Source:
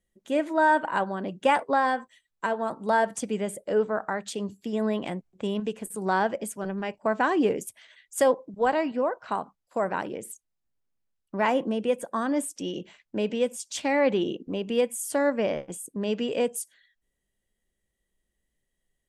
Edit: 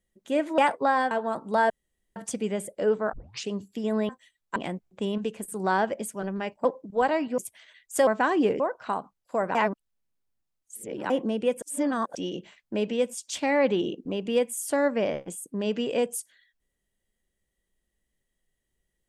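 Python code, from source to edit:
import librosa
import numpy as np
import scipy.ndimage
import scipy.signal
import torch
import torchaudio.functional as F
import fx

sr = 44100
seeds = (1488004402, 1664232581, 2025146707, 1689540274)

y = fx.edit(x, sr, fx.cut(start_s=0.58, length_s=0.88),
    fx.move(start_s=1.99, length_s=0.47, to_s=4.98),
    fx.insert_room_tone(at_s=3.05, length_s=0.46),
    fx.tape_start(start_s=4.02, length_s=0.36),
    fx.swap(start_s=7.07, length_s=0.53, other_s=8.29, other_length_s=0.73),
    fx.reverse_span(start_s=9.97, length_s=1.55),
    fx.reverse_span(start_s=12.04, length_s=0.53), tone=tone)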